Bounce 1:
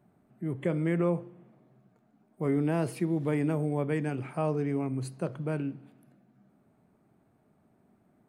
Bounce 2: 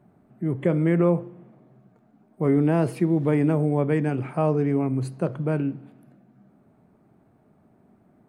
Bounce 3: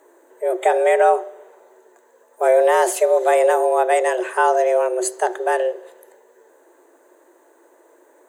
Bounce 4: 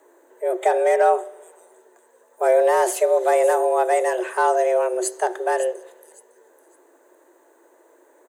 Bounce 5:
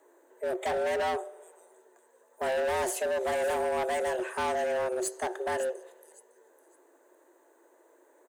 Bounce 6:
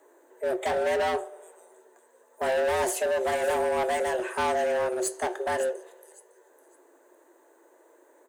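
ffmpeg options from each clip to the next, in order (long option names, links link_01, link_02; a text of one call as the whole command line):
ffmpeg -i in.wav -af "highshelf=frequency=2400:gain=-8,volume=7.5dB" out.wav
ffmpeg -i in.wav -af "afreqshift=250,superequalizer=6b=1.78:7b=0.562:11b=2:14b=0.631:15b=3.16,aexciter=amount=3.5:drive=4.3:freq=3500,volume=6.5dB" out.wav
ffmpeg -i in.wav -filter_complex "[0:a]acrossover=split=460|1500|5200[link_01][link_02][link_03][link_04];[link_03]asoftclip=type=hard:threshold=-30dB[link_05];[link_04]aecho=1:1:557|1114|1671:0.335|0.0837|0.0209[link_06];[link_01][link_02][link_05][link_06]amix=inputs=4:normalize=0,volume=-2dB" out.wav
ffmpeg -i in.wav -af "asoftclip=type=hard:threshold=-20dB,volume=-6.5dB" out.wav
ffmpeg -i in.wav -af "flanger=delay=9.9:depth=2.9:regen=-72:speed=0.32:shape=sinusoidal,volume=7.5dB" out.wav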